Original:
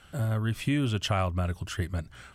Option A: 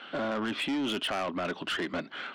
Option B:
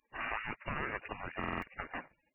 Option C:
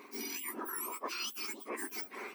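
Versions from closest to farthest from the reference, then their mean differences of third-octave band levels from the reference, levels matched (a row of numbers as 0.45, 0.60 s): A, B, C; 9.5, 12.5, 17.5 dB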